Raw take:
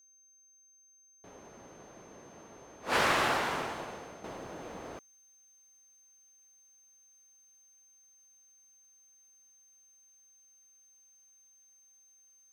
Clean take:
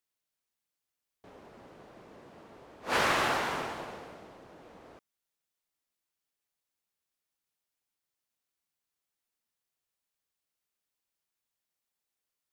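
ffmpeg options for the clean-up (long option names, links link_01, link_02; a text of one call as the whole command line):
ffmpeg -i in.wav -af "bandreject=frequency=6300:width=30,asetnsamples=nb_out_samples=441:pad=0,asendcmd='4.24 volume volume -9dB',volume=0dB" out.wav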